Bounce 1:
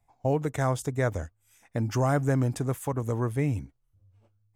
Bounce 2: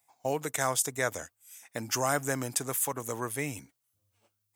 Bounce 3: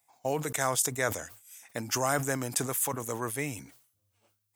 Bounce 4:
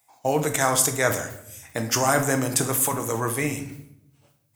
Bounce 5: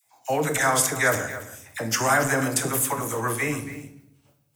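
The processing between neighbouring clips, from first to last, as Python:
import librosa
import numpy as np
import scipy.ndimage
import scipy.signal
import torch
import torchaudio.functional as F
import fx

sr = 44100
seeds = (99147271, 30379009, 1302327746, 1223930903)

y1 = scipy.signal.sosfilt(scipy.signal.butter(2, 110.0, 'highpass', fs=sr, output='sos'), x)
y1 = fx.tilt_eq(y1, sr, slope=4.0)
y2 = fx.sustainer(y1, sr, db_per_s=98.0)
y3 = fx.room_shoebox(y2, sr, seeds[0], volume_m3=200.0, walls='mixed', distance_m=0.55)
y3 = y3 * librosa.db_to_amplitude(6.5)
y4 = fx.dispersion(y3, sr, late='lows', ms=54.0, hz=900.0)
y4 = fx.dynamic_eq(y4, sr, hz=1700.0, q=1.1, threshold_db=-36.0, ratio=4.0, max_db=6)
y4 = y4 + 10.0 ** (-14.5 / 20.0) * np.pad(y4, (int(279 * sr / 1000.0), 0))[:len(y4)]
y4 = y4 * librosa.db_to_amplitude(-2.0)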